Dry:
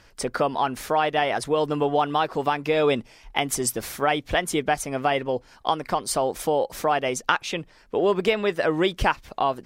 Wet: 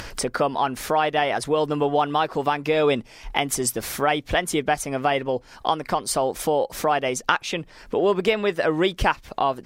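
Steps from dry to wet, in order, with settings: upward compressor, threshold -23 dBFS; trim +1 dB

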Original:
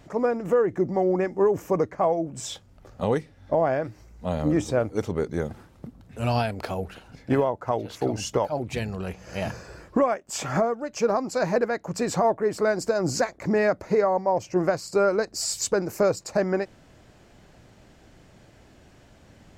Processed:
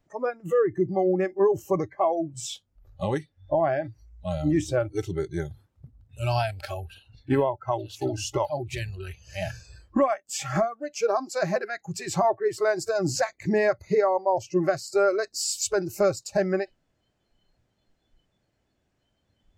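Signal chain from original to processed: spectral noise reduction 21 dB

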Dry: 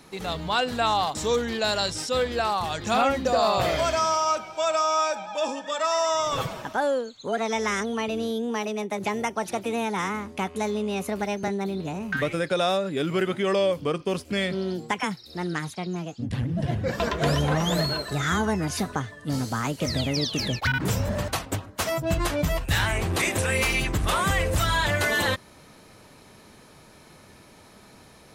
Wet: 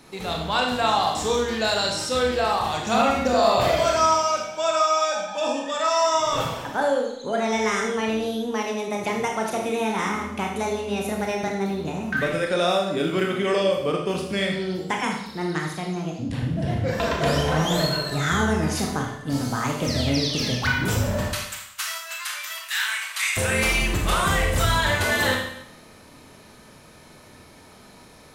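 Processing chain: 21.32–23.37 s: high-pass 1.3 kHz 24 dB/octave; Schroeder reverb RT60 0.74 s, combs from 25 ms, DRR 0.5 dB

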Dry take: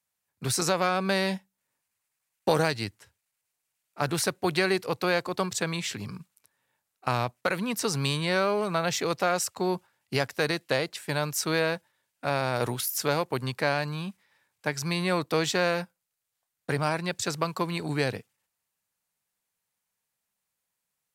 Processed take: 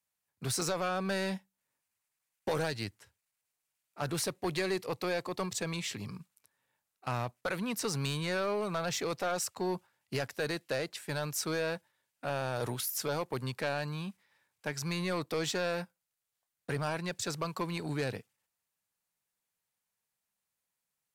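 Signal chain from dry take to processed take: 4.20–6.18 s: band-stop 1.5 kHz, Q 7.1; saturation -21 dBFS, distortion -11 dB; trim -4 dB

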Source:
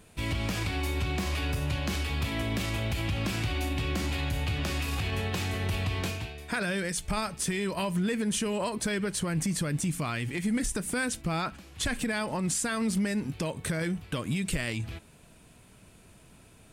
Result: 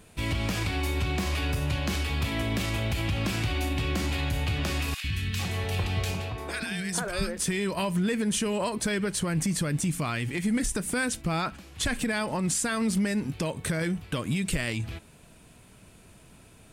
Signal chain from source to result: 4.94–7.39 s: three bands offset in time highs, lows, mids 100/450 ms, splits 280/1500 Hz; trim +2 dB

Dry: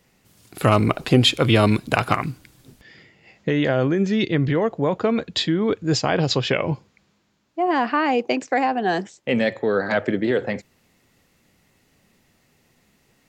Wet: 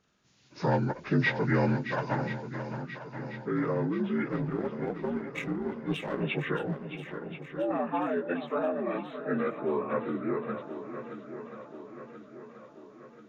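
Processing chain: frequency axis rescaled in octaves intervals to 80%; 4.28–6.23 s: power-law waveshaper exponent 1.4; shuffle delay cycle 1033 ms, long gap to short 1.5:1, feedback 53%, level -10.5 dB; trim -8.5 dB

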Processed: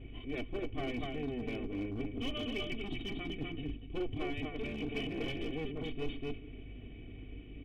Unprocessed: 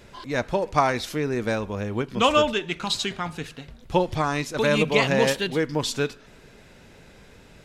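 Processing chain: comb filter that takes the minimum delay 1.6 ms; cascade formant filter i; in parallel at -1 dB: peak limiter -34 dBFS, peak gain reduction 11.5 dB; on the sum: distance through air 300 m; delay 247 ms -6.5 dB; reverse; compression 6:1, threshold -43 dBFS, peak gain reduction 13.5 dB; reverse; hum 50 Hz, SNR 12 dB; hard clipper -40 dBFS, distortion -19 dB; peaking EQ 61 Hz -6 dB 0.56 oct; comb 2.7 ms, depth 70%; trim +8.5 dB

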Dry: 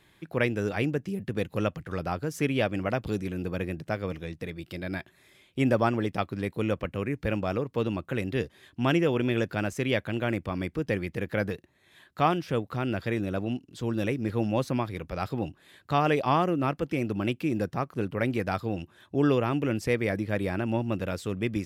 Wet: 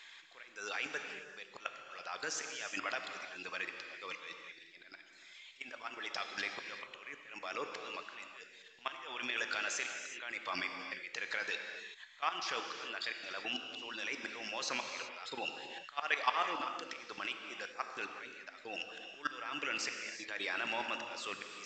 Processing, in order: high-pass 1.5 kHz 12 dB/octave; reverb removal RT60 0.58 s; in parallel at -2 dB: compression 16:1, threshold -46 dBFS, peak gain reduction 21 dB; on the sum: peak limiter -24.5 dBFS, peak gain reduction 9.5 dB; level held to a coarse grid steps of 18 dB; slow attack 410 ms; gated-style reverb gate 410 ms flat, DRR 4.5 dB; trim +16.5 dB; µ-law 128 kbps 16 kHz

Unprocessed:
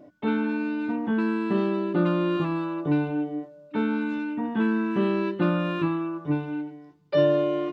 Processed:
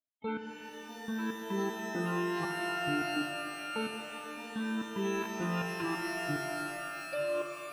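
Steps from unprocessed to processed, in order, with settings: expander on every frequency bin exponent 3; level held to a coarse grid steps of 18 dB; pitch-shifted reverb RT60 3.5 s, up +12 st, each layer -2 dB, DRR 6 dB; trim +2 dB

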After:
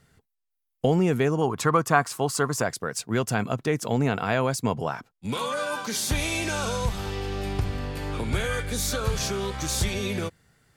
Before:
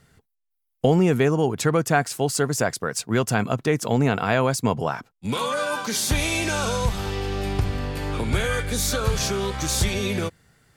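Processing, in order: 1.41–2.62 s: peaking EQ 1.1 kHz +13 dB 0.54 oct; trim -3.5 dB

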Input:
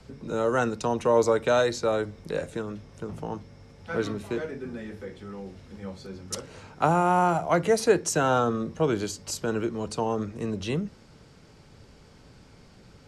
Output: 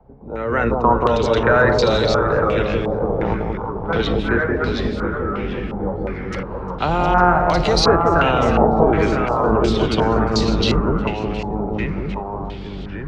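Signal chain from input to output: octave divider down 2 oct, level -2 dB; peak limiter -19.5 dBFS, peak gain reduction 11 dB; level rider gain up to 13 dB; ever faster or slower copies 481 ms, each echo -1 st, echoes 2, each echo -6 dB; on a send: echo whose repeats swap between lows and highs 178 ms, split 870 Hz, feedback 58%, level -2 dB; on the sum: step-sequenced low-pass 2.8 Hz 810–4300 Hz; trim -4 dB

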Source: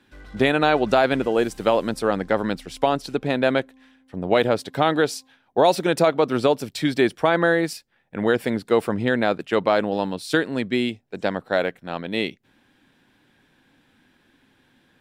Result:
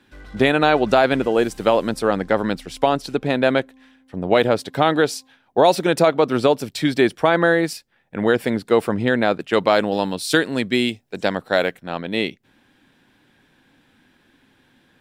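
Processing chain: 9.53–11.79 s: treble shelf 3.4 kHz +8 dB; trim +2.5 dB

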